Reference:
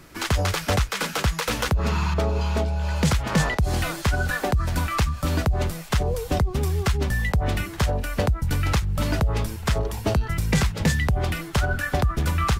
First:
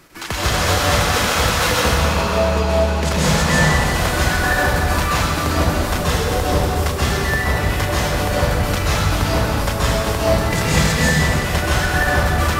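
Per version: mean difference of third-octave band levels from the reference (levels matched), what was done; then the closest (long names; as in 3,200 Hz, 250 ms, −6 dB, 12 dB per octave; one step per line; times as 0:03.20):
7.5 dB: low-shelf EQ 230 Hz −8 dB
in parallel at −1 dB: output level in coarse steps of 13 dB
on the sum: dense smooth reverb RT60 2.7 s, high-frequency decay 0.8×, pre-delay 115 ms, DRR −9 dB
level −3.5 dB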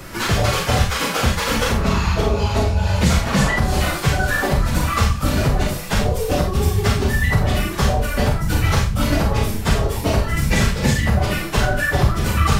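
4.0 dB: random phases in long frames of 50 ms
four-comb reverb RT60 0.34 s, combs from 28 ms, DRR 1 dB
multiband upward and downward compressor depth 40%
level +3 dB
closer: second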